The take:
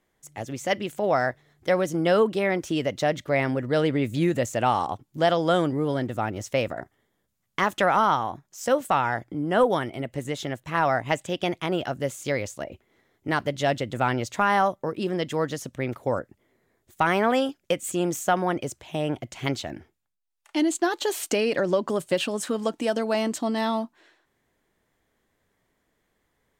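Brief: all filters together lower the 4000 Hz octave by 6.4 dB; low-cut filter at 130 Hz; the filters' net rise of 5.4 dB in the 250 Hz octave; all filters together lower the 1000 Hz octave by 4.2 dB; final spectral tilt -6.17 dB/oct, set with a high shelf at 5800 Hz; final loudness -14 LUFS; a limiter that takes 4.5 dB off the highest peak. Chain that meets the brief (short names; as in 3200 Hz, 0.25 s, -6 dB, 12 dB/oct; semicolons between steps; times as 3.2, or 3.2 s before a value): HPF 130 Hz; bell 250 Hz +8 dB; bell 1000 Hz -6 dB; bell 4000 Hz -6 dB; high shelf 5800 Hz -8.5 dB; gain +11.5 dB; limiter -2 dBFS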